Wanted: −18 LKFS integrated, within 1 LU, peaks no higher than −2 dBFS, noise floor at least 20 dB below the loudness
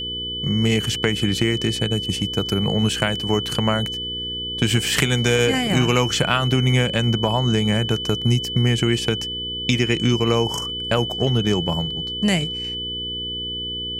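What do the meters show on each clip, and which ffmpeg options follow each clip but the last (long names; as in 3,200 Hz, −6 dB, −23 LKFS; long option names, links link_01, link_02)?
mains hum 60 Hz; hum harmonics up to 480 Hz; level of the hum −32 dBFS; interfering tone 3,000 Hz; level of the tone −26 dBFS; integrated loudness −20.5 LKFS; sample peak −1.5 dBFS; target loudness −18.0 LKFS
→ -af "bandreject=frequency=60:width_type=h:width=4,bandreject=frequency=120:width_type=h:width=4,bandreject=frequency=180:width_type=h:width=4,bandreject=frequency=240:width_type=h:width=4,bandreject=frequency=300:width_type=h:width=4,bandreject=frequency=360:width_type=h:width=4,bandreject=frequency=420:width_type=h:width=4,bandreject=frequency=480:width_type=h:width=4"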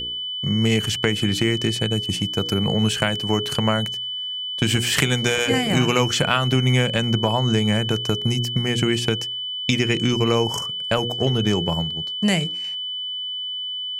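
mains hum none found; interfering tone 3,000 Hz; level of the tone −26 dBFS
→ -af "bandreject=frequency=3000:width=30"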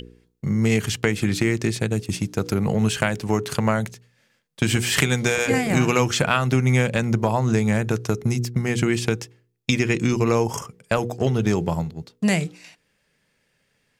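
interfering tone none found; integrated loudness −22.0 LKFS; sample peak −1.5 dBFS; target loudness −18.0 LKFS
→ -af "volume=4dB,alimiter=limit=-2dB:level=0:latency=1"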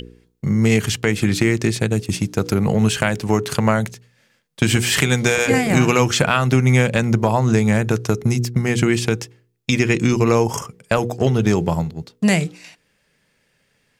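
integrated loudness −18.5 LKFS; sample peak −2.0 dBFS; background noise floor −65 dBFS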